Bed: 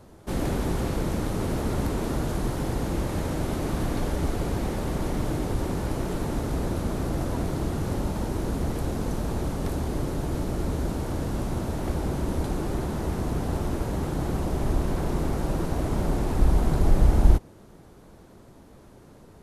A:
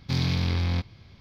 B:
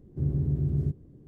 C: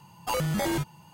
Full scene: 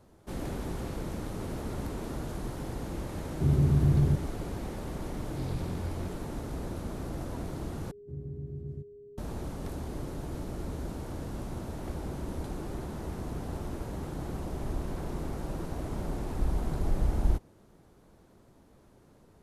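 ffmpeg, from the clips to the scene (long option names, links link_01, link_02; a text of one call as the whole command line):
ffmpeg -i bed.wav -i cue0.wav -i cue1.wav -filter_complex "[2:a]asplit=2[link_01][link_02];[0:a]volume=-9dB[link_03];[link_01]alimiter=level_in=20.5dB:limit=-1dB:release=50:level=0:latency=1[link_04];[1:a]tiltshelf=frequency=970:gain=5.5[link_05];[link_02]aeval=exprs='val(0)+0.02*sin(2*PI*410*n/s)':channel_layout=same[link_06];[link_03]asplit=2[link_07][link_08];[link_07]atrim=end=7.914[link_09];[link_06]atrim=end=1.27,asetpts=PTS-STARTPTS,volume=-13dB[link_10];[link_08]atrim=start=9.176[link_11];[link_04]atrim=end=1.27,asetpts=PTS-STARTPTS,volume=-15.5dB,afade=type=in:duration=0.004:curve=hsin,afade=type=out:start_time=1.266:duration=0.004:curve=hsin,adelay=3240[link_12];[link_05]atrim=end=1.2,asetpts=PTS-STARTPTS,volume=-17dB,afade=type=in:duration=0.004:curve=hsin,afade=type=out:start_time=1.196:duration=0.004:curve=hsin,adelay=5270[link_13];[link_09][link_10]acrossfade=duration=0.004:curve1=hsin:curve2=hsin[link_14];[link_14][link_11]acrossfade=duration=0.004:curve1=hsin:curve2=hsin[link_15];[link_15][link_12][link_13]amix=inputs=3:normalize=0" out.wav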